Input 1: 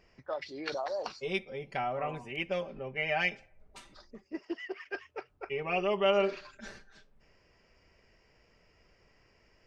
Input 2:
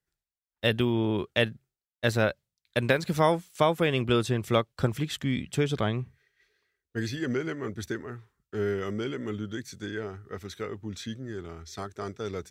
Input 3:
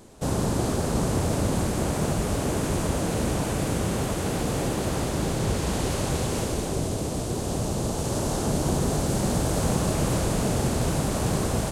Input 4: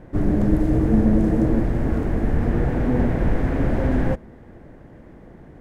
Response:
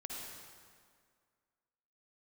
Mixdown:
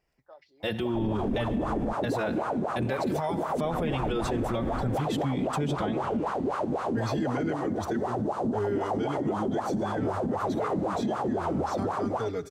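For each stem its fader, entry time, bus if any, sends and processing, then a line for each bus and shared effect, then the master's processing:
-14.0 dB, 0.00 s, no send, auto duck -8 dB, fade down 0.50 s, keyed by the second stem
+0.5 dB, 0.00 s, send -12.5 dB, bass shelf 430 Hz +6 dB; endless flanger 4.5 ms +0.57 Hz
0.0 dB, 0.60 s, no send, level rider gain up to 10.5 dB; wah-wah 3.9 Hz 220–1300 Hz, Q 4.9
-12.5 dB, 0.80 s, muted 1.93–3.64 s, no send, none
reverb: on, RT60 2.0 s, pre-delay 48 ms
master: peaking EQ 790 Hz +5 dB 0.65 oct; peak limiter -20.5 dBFS, peak gain reduction 14.5 dB

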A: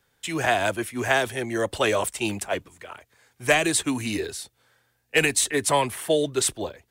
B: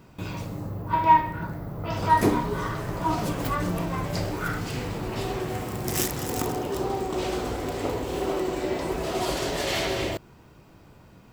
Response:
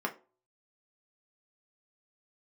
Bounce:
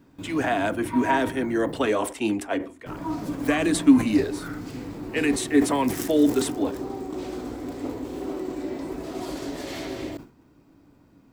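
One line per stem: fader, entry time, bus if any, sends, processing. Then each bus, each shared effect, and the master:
-4.5 dB, 0.00 s, send -10 dB, treble shelf 4.8 kHz -8 dB; peak limiter -14.5 dBFS, peak gain reduction 6.5 dB
-9.0 dB, 0.00 s, muted 1.90–2.86 s, no send, peaking EQ 2.9 kHz -4 dB 0.34 oct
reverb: on, RT60 0.35 s, pre-delay 3 ms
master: peaking EQ 280 Hz +14.5 dB 0.49 oct; decay stretcher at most 150 dB/s

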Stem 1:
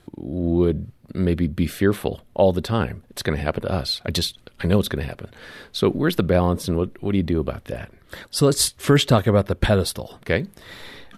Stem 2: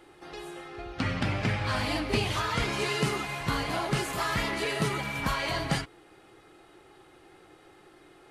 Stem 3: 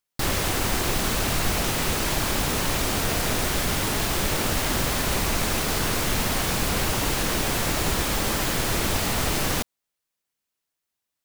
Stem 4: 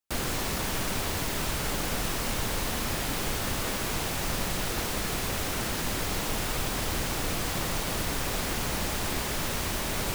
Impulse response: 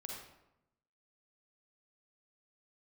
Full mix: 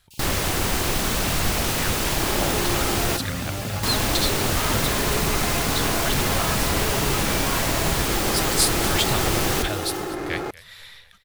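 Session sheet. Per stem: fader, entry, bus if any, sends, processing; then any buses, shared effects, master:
+0.5 dB, 0.00 s, no send, echo send -18.5 dB, amplifier tone stack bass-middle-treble 10-0-10
-5.5 dB, 2.20 s, no send, no echo send, median filter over 15 samples; level flattener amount 100%
+1.0 dB, 0.00 s, muted 3.17–3.83 s, no send, no echo send, none
-15.0 dB, 0.00 s, no send, no echo send, level rider gain up to 11.5 dB; elliptic high-pass 2.6 kHz; comb 5.2 ms, depth 85%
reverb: none
echo: feedback delay 241 ms, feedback 46%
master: none

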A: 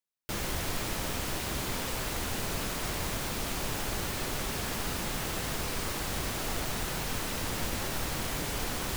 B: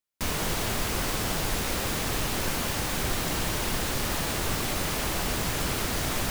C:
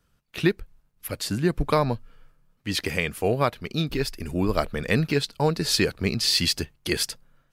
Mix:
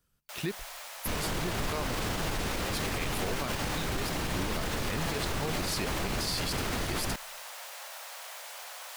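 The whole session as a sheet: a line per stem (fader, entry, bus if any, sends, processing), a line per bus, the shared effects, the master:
-7.5 dB, 0.00 s, no send, steep high-pass 560 Hz 48 dB/octave
+1.5 dB, 0.85 s, no send, treble shelf 6.5 kHz -9.5 dB
-8.5 dB, 0.00 s, no send, treble shelf 6.3 kHz +11 dB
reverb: none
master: peak limiter -22.5 dBFS, peak gain reduction 10.5 dB

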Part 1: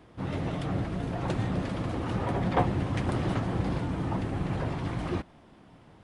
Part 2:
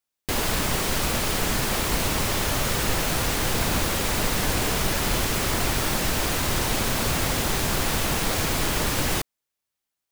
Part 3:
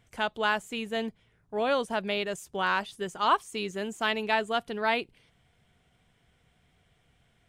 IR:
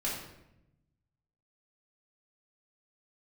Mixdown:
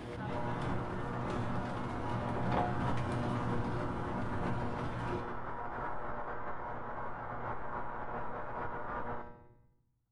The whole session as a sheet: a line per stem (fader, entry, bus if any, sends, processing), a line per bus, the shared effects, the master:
0.0 dB, 0.00 s, no bus, send -14 dB, none
+2.0 dB, 0.00 s, bus A, send -21 dB, low-pass 1.2 kHz 12 dB/octave
-10.0 dB, 0.00 s, bus A, no send, none
bus A: 0.0 dB, cabinet simulation 430–3100 Hz, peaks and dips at 960 Hz +7 dB, 1.4 kHz +7 dB, 2.6 kHz -9 dB; peak limiter -26 dBFS, peak gain reduction 12.5 dB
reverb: on, RT60 0.85 s, pre-delay 3 ms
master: feedback comb 120 Hz, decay 0.78 s, harmonics all, mix 80%; swell ahead of each attack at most 25 dB/s

